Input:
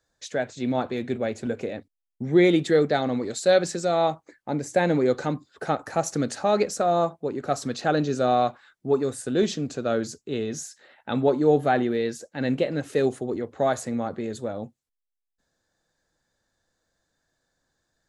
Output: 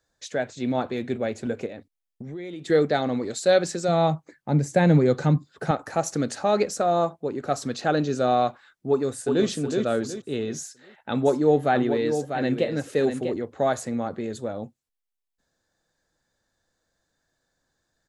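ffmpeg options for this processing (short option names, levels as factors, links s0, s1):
-filter_complex "[0:a]asettb=1/sr,asplit=3[s0][s1][s2];[s0]atrim=end=1.664[s3];[s1]atrim=start=1.66:end=2.7,asetpts=PTS-STARTPTS,afade=t=in:d=0.004:c=qsin,afade=t=out:st=1.036:d=0.004:c=qsin,acompressor=threshold=0.02:ratio=6:attack=3.2:release=140:knee=1:detection=peak[s4];[s2]atrim=start=2.696[s5];[s3][s4]acrossfade=d=0.004:c1=hsin:c2=qsin[s6];[s6][s5]acrossfade=d=0.004:c1=qsin:c2=hsin,asettb=1/sr,asplit=3[s7][s8][s9];[s7]atrim=end=3.884[s10];[s8]atrim=start=3.88:end=5.71,asetpts=PTS-STARTPTS,afade=t=in:d=0.004:c=qsin,afade=t=out:st=1.826:d=0.004:c=qsin,equalizer=f=150:w=1.9:g=12.5[s11];[s9]atrim=start=5.706[s12];[s10][s11]acrossfade=d=0.004:c1=hsin:c2=qsin[s13];[s13][s12]acrossfade=d=0.004:c1=qsin:c2=hsin,asplit=2[s14][s15];[s15]afade=t=in:st=8.89:d=0.01,afade=t=out:st=9.47:d=0.01,aecho=0:1:370|740|1110|1480:0.595662|0.208482|0.0729686|0.025539[s16];[s14][s16]amix=inputs=2:normalize=0,asplit=3[s17][s18][s19];[s17]afade=t=out:st=11.25:d=0.02[s20];[s18]aecho=1:1:645:0.422,afade=t=in:st=11.25:d=0.02,afade=t=out:st=13.32:d=0.02[s21];[s19]afade=t=in:st=13.32:d=0.02[s22];[s20][s21][s22]amix=inputs=3:normalize=0"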